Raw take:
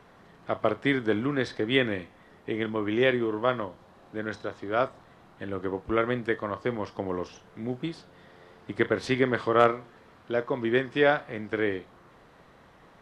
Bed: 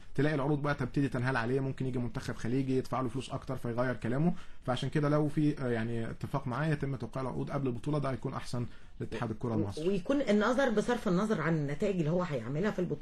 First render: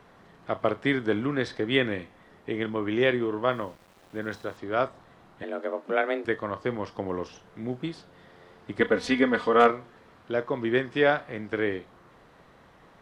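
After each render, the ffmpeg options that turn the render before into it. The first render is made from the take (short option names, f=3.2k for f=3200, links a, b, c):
-filter_complex "[0:a]asettb=1/sr,asplit=3[a][b][c];[a]atrim=end=3.514[d];[b]atrim=start=3.51:end=4.57,asetpts=PTS-STARTPTS,afade=t=in:d=0.004:c=qsin,afade=t=out:st=1.056:d=0.004:c=qsin,aeval=exprs='val(0)*gte(abs(val(0)),0.00266)':c=same[e];[c]atrim=start=4.566[f];[d][e]acrossfade=d=0.004:c1=hsin:c2=qsin[g];[g][f]acrossfade=d=0.004:c1=qsin:c2=hsin,asettb=1/sr,asplit=3[h][i][j];[h]atrim=end=5.434[k];[i]atrim=start=5.43:end=6.25,asetpts=PTS-STARTPTS,afade=t=in:d=0.004:c=qsin,afade=t=out:st=0.816:d=0.004:c=qsin,afreqshift=140[l];[j]atrim=start=6.246[m];[k][l]acrossfade=d=0.004:c1=hsin:c2=qsin[n];[n][m]acrossfade=d=0.004:c1=qsin:c2=hsin,asettb=1/sr,asplit=3[o][p][q];[o]atrim=end=8.804[r];[p]atrim=start=8.8:end=9.7,asetpts=PTS-STARTPTS,afade=t=in:d=0.004:c=qsin,afade=t=out:st=0.896:d=0.004:c=qsin,aecho=1:1:4.1:0.79,atrim=end_sample=39690[s];[q]atrim=start=9.696[t];[r][s]acrossfade=d=0.004:c1=hsin:c2=qsin[u];[u][t]acrossfade=d=0.004:c1=qsin:c2=hsin"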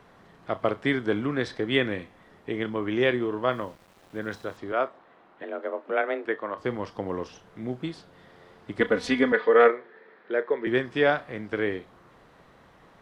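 -filter_complex "[0:a]asettb=1/sr,asplit=3[a][b][c];[a]atrim=end=4.724[d];[b]atrim=start=4.72:end=6.58,asetpts=PTS-STARTPTS,afade=t=in:d=0.004:c=qsin,afade=t=out:st=1.856:d=0.004:c=qsin,acrossover=split=240 3400:gain=0.1 1 0.158[e][f][g];[e][f][g]amix=inputs=3:normalize=0[h];[c]atrim=start=6.576[i];[d][h]acrossfade=d=0.004:c1=hsin:c2=qsin[j];[j][i]acrossfade=d=0.004:c1=qsin:c2=hsin,asettb=1/sr,asplit=3[k][l][m];[k]atrim=end=9.324[n];[l]atrim=start=9.32:end=10.67,asetpts=PTS-STARTPTS,afade=t=in:d=0.004:c=qsin,afade=t=out:st=1.346:d=0.004:c=qsin,highpass=f=230:w=0.5412,highpass=f=230:w=1.3066,equalizer=f=270:t=q:w=4:g=-9,equalizer=f=430:t=q:w=4:g=8,equalizer=f=680:t=q:w=4:g=-4,equalizer=f=1.1k:t=q:w=4:g=-5,equalizer=f=1.8k:t=q:w=4:g=9,equalizer=f=2.9k:t=q:w=4:g=-7,lowpass=f=3.6k:w=0.5412,lowpass=f=3.6k:w=1.3066[o];[m]atrim=start=10.666[p];[n][o]acrossfade=d=0.004:c1=hsin:c2=qsin[q];[q][p]acrossfade=d=0.004:c1=qsin:c2=hsin"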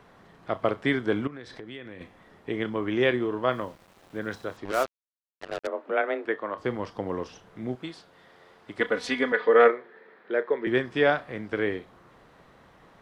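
-filter_complex "[0:a]asettb=1/sr,asplit=3[a][b][c];[a]atrim=end=1.274[d];[b]atrim=start=1.27:end=2.01,asetpts=PTS-STARTPTS,afade=t=in:d=0.004:c=qsin,afade=t=out:st=0.736:d=0.004:c=qsin,acompressor=threshold=-39dB:ratio=5:attack=3.2:release=140:knee=1:detection=peak[e];[c]atrim=start=2.006[f];[d][e]acrossfade=d=0.004:c1=hsin:c2=qsin[g];[g][f]acrossfade=d=0.004:c1=qsin:c2=hsin,asettb=1/sr,asplit=3[h][i][j];[h]atrim=end=4.654[k];[i]atrim=start=4.65:end=5.67,asetpts=PTS-STARTPTS,afade=t=in:d=0.004:c=qsin,afade=t=out:st=1.016:d=0.004:c=qsin,acrusher=bits=4:mix=0:aa=0.5[l];[j]atrim=start=5.666[m];[k][l]acrossfade=d=0.004:c1=hsin:c2=qsin[n];[n][m]acrossfade=d=0.004:c1=qsin:c2=hsin,asettb=1/sr,asplit=3[o][p][q];[o]atrim=end=7.754[r];[p]atrim=start=7.75:end=9.4,asetpts=PTS-STARTPTS,afade=t=in:d=0.004:c=qsin,afade=t=out:st=1.646:d=0.004:c=qsin,lowshelf=f=310:g=-10[s];[q]atrim=start=9.396[t];[r][s]acrossfade=d=0.004:c1=hsin:c2=qsin[u];[u][t]acrossfade=d=0.004:c1=qsin:c2=hsin"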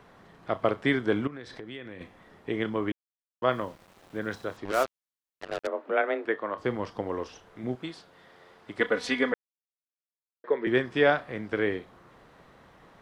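-filter_complex "[0:a]asettb=1/sr,asplit=3[a][b][c];[a]atrim=end=7.014[d];[b]atrim=start=7.01:end=7.64,asetpts=PTS-STARTPTS,afade=t=in:d=0.004:c=qsin,afade=t=out:st=0.626:d=0.004:c=qsin,equalizer=f=160:w=1.5:g=-8[e];[c]atrim=start=7.636[f];[d][e]acrossfade=d=0.004:c1=hsin:c2=qsin[g];[g][f]acrossfade=d=0.004:c1=qsin:c2=hsin,asplit=5[h][i][j][k][l];[h]atrim=end=2.92,asetpts=PTS-STARTPTS,afade=t=out:st=2.916:d=0.004:c=hsin[m];[i]atrim=start=2.92:end=3.42,asetpts=PTS-STARTPTS,volume=0[n];[j]atrim=start=3.42:end=9.34,asetpts=PTS-STARTPTS,afade=t=in:d=0.004:c=hsin,afade=t=out:st=5.916:d=0.004:c=hsin[o];[k]atrim=start=9.34:end=10.44,asetpts=PTS-STARTPTS,volume=0[p];[l]atrim=start=10.44,asetpts=PTS-STARTPTS,afade=t=in:d=0.004:c=hsin[q];[m][n][o][p][q]concat=n=5:v=0:a=1"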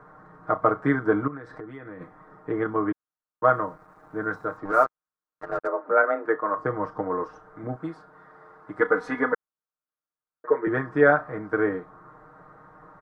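-af "highshelf=f=2k:t=q:w=3:g=-14,aecho=1:1:6.5:0.85"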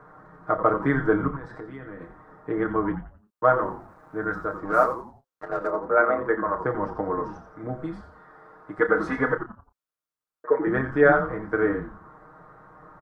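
-filter_complex "[0:a]asplit=2[a][b];[b]adelay=30,volume=-10.5dB[c];[a][c]amix=inputs=2:normalize=0,asplit=5[d][e][f][g][h];[e]adelay=87,afreqshift=-130,volume=-9.5dB[i];[f]adelay=174,afreqshift=-260,volume=-18.4dB[j];[g]adelay=261,afreqshift=-390,volume=-27.2dB[k];[h]adelay=348,afreqshift=-520,volume=-36.1dB[l];[d][i][j][k][l]amix=inputs=5:normalize=0"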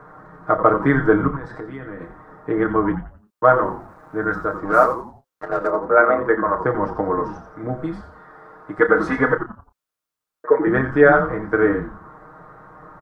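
-af "volume=6dB,alimiter=limit=-1dB:level=0:latency=1"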